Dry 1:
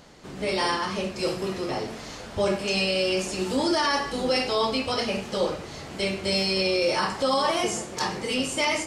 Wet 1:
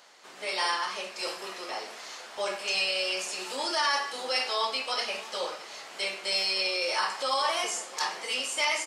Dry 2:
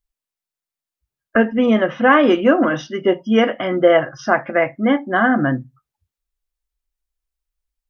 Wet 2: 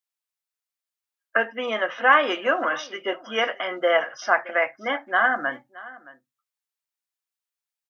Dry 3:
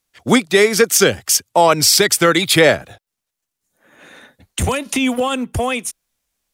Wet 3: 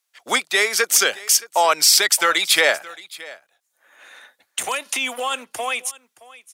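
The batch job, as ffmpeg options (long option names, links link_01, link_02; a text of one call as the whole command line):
ffmpeg -i in.wav -af "highpass=800,aecho=1:1:621:0.1,volume=-1dB" out.wav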